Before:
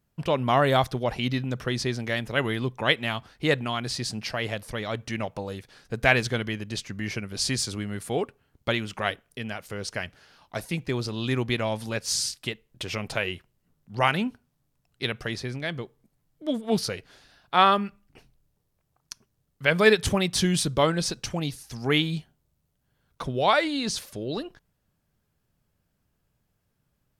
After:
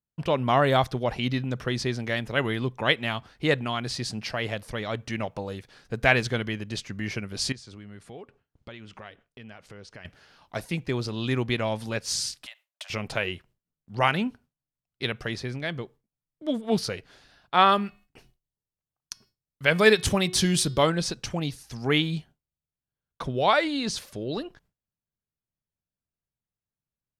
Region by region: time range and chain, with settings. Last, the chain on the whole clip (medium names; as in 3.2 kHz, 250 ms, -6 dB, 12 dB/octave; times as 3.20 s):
7.52–10.05 s: compression 3:1, threshold -44 dBFS + distance through air 56 m
12.46–12.90 s: compression 10:1, threshold -34 dBFS + steep high-pass 580 Hz 96 dB/octave + treble shelf 6.2 kHz +7.5 dB
17.69–20.90 s: treble shelf 5.4 kHz +7.5 dB + de-hum 366.4 Hz, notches 15
whole clip: treble shelf 8.8 kHz -7 dB; gate with hold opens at -49 dBFS